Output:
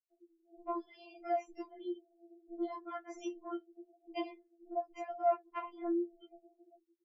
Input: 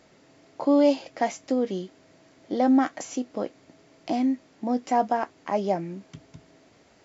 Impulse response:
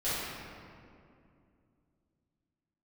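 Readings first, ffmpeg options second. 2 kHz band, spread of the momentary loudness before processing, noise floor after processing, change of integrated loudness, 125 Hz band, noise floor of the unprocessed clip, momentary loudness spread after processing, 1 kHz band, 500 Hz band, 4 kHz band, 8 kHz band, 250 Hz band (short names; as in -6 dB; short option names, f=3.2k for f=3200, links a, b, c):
-15.5 dB, 14 LU, -78 dBFS, -14.0 dB, under -40 dB, -58 dBFS, 19 LU, -11.0 dB, -12.0 dB, -14.0 dB, n/a, -17.0 dB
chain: -filter_complex "[0:a]acrossover=split=4200[a][b];[b]acompressor=threshold=-54dB:ratio=4:attack=1:release=60[c];[a][c]amix=inputs=2:normalize=0,highpass=45,afftfilt=real='re*gte(hypot(re,im),0.00891)':imag='im*gte(hypot(re,im),0.00891)':win_size=1024:overlap=0.75,highshelf=f=2.6k:g=-5,acompressor=threshold=-36dB:ratio=5,flanger=delay=8.6:depth=9.5:regen=36:speed=0.43:shape=sinusoidal,acrossover=split=230[d][e];[e]adelay=100[f];[d][f]amix=inputs=2:normalize=0,afftfilt=real='re*4*eq(mod(b,16),0)':imag='im*4*eq(mod(b,16),0)':win_size=2048:overlap=0.75,volume=9.5dB"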